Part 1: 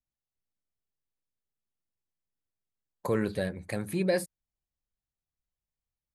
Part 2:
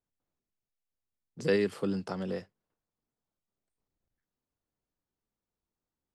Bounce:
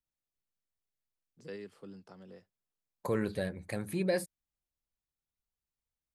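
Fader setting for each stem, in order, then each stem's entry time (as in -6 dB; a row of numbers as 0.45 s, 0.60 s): -3.5 dB, -17.5 dB; 0.00 s, 0.00 s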